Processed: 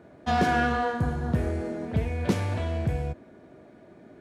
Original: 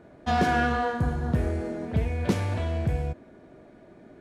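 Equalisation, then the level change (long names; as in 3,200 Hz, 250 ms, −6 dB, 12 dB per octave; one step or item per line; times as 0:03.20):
high-pass filter 60 Hz
0.0 dB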